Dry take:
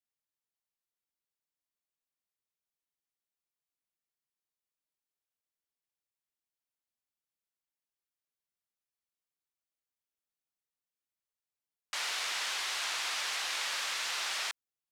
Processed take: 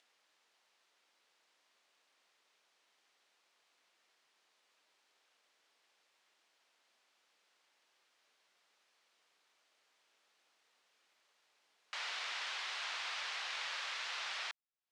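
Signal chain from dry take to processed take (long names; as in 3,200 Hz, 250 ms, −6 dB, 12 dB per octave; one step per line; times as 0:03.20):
upward compression, threshold −41 dBFS
band-pass filter 440–4,400 Hz
level −5 dB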